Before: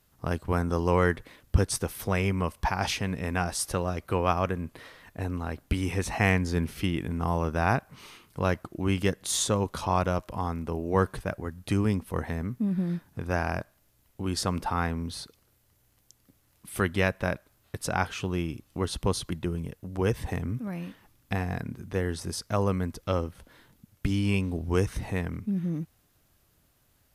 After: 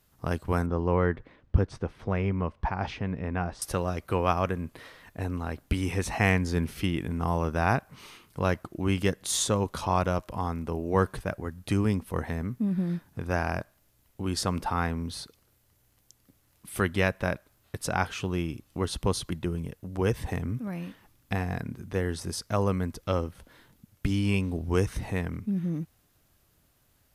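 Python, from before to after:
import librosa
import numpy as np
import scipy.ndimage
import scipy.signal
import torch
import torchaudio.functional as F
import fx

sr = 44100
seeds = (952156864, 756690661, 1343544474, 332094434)

y = fx.spacing_loss(x, sr, db_at_10k=32, at=(0.66, 3.62))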